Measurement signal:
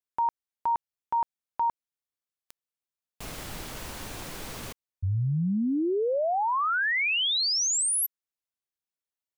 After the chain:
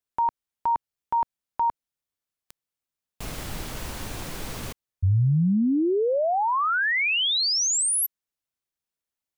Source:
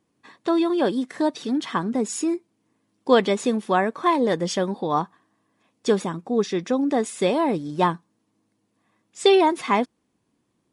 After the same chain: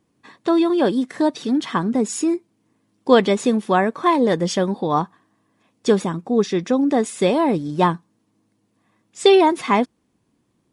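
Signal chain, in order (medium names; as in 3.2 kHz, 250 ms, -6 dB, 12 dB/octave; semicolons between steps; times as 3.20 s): bass shelf 210 Hz +5 dB; trim +2.5 dB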